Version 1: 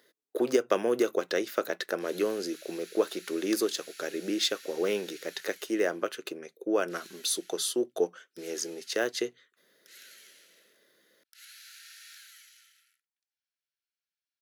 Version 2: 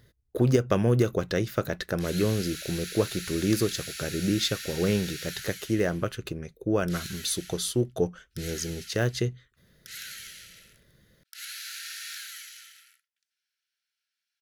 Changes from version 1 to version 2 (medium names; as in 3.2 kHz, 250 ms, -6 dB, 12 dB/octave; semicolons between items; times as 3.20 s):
background +11.5 dB; master: remove high-pass 310 Hz 24 dB/octave